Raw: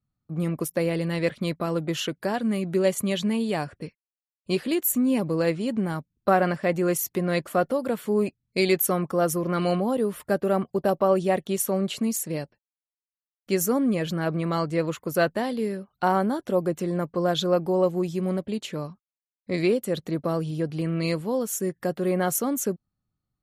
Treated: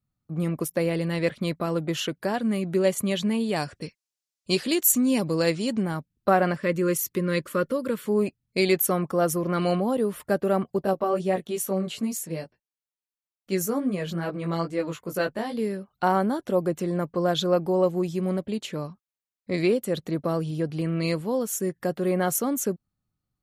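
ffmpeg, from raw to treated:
-filter_complex "[0:a]asettb=1/sr,asplit=3[s0][s1][s2];[s0]atrim=end=3.564[s3];[s1]atrim=start=3.56:end=5.83,asetpts=PTS-STARTPTS,afade=t=in:d=0.004:c=qsin,afade=t=out:st=2.266:d=0.004:c=qsin,equalizer=f=5900:t=o:w=1.7:g=11[s4];[s2]atrim=start=5.826[s5];[s3][s4]acrossfade=d=0.004:c1=hsin:c2=qsin[s6];[s6][s5]acrossfade=d=0.004:c1=qsin:c2=hsin,asettb=1/sr,asplit=3[s7][s8][s9];[s7]atrim=end=6.574[s10];[s8]atrim=start=6.57:end=8.06,asetpts=PTS-STARTPTS,afade=t=in:d=0.004:c=qsin,afade=t=out:st=1.486:d=0.004:c=qsin,asuperstop=centerf=750:order=4:qfactor=1.9[s11];[s9]atrim=start=8.056[s12];[s10][s11]acrossfade=d=0.004:c1=hsin:c2=qsin[s13];[s13][s12]acrossfade=d=0.004:c1=qsin:c2=hsin,asplit=3[s14][s15][s16];[s14]afade=t=out:st=10.83:d=0.02[s17];[s15]flanger=delay=15.5:depth=2.9:speed=2.3,afade=t=in:st=10.83:d=0.02,afade=t=out:st=15.56:d=0.02[s18];[s16]afade=t=in:st=15.56:d=0.02[s19];[s17][s18][s19]amix=inputs=3:normalize=0"

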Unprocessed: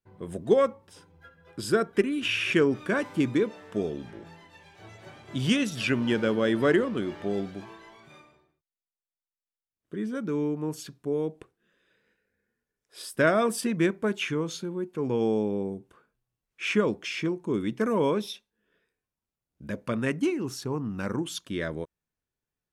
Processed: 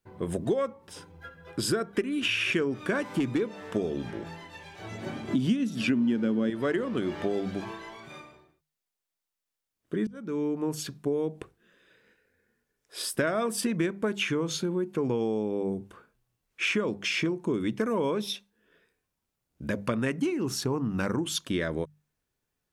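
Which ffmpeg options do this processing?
-filter_complex "[0:a]asettb=1/sr,asplit=3[s0][s1][s2];[s0]atrim=end=2.944[s3];[s1]atrim=start=2.94:end=3.41,asetpts=PTS-STARTPTS,afade=t=in:d=0.004:c=qsin,afade=t=out:st=0.466:d=0.004:c=qsin,asoftclip=type=hard:threshold=0.119[s4];[s2]atrim=start=3.406[s5];[s3][s4]acrossfade=d=0.004:c1=hsin:c2=qsin[s6];[s6][s5]acrossfade=d=0.004:c1=qsin:c2=hsin,asettb=1/sr,asplit=3[s7][s8][s9];[s7]atrim=end=4.914[s10];[s8]atrim=start=4.91:end=6.5,asetpts=PTS-STARTPTS,afade=t=in:d=0.004:c=qsin,afade=t=out:st=1.586:d=0.004:c=qsin,equalizer=f=240:w=1.5:g=15[s11];[s9]atrim=start=6.496[s12];[s10][s11]acrossfade=d=0.004:c1=hsin:c2=qsin[s13];[s13][s12]acrossfade=d=0.004:c1=qsin:c2=hsin,asplit=2[s14][s15];[s14]atrim=end=10.07,asetpts=PTS-STARTPTS,afade=t=out:st=10.066:d=0.004:c=hsin[s16];[s15]atrim=start=10.07,asetpts=PTS-STARTPTS,afade=t=in:d=1.17:c=qsin[s17];[s16][s17]concat=n=2:v=0:a=1,bandreject=f=50:t=h:w=6,bandreject=f=100:t=h:w=6,bandreject=f=150:t=h:w=6,bandreject=f=200:t=h:w=6,acompressor=threshold=0.0251:ratio=6,volume=2.24"

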